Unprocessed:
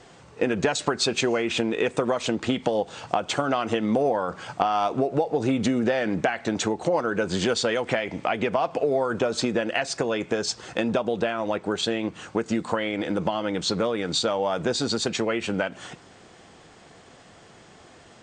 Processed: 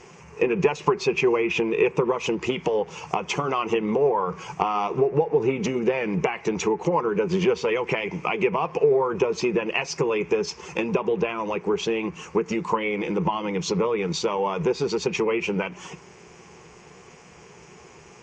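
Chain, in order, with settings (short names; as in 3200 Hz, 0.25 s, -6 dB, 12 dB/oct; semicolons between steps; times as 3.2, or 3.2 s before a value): bin magnitudes rounded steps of 15 dB; ripple EQ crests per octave 0.77, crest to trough 14 dB; buzz 120 Hz, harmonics 20, -56 dBFS -1 dB/oct; treble ducked by the level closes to 2700 Hz, closed at -18.5 dBFS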